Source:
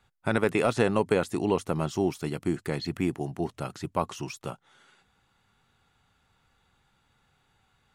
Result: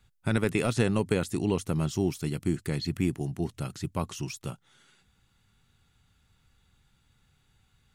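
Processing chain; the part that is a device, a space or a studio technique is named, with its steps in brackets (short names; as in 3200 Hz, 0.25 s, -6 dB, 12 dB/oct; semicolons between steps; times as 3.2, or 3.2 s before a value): smiley-face EQ (low shelf 160 Hz +7.5 dB; bell 790 Hz -8 dB 2.1 oct; high shelf 5100 Hz +4.5 dB)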